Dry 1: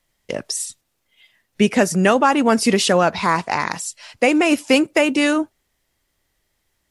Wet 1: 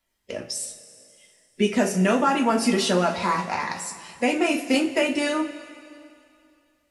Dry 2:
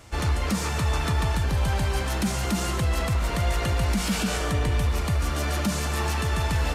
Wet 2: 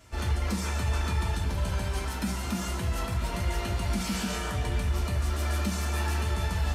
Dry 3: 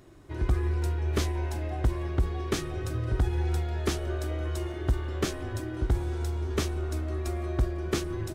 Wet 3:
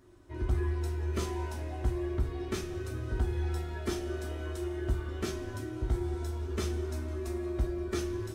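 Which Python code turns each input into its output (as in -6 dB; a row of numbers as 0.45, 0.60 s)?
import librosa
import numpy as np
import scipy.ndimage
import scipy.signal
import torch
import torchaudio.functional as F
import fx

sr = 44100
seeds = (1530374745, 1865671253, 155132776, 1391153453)

y = fx.spec_quant(x, sr, step_db=15)
y = fx.rev_double_slope(y, sr, seeds[0], early_s=0.28, late_s=2.6, knee_db=-18, drr_db=0.0)
y = F.gain(torch.from_numpy(y), -8.0).numpy()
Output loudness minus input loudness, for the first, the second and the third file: -5.5, -4.5, -4.0 LU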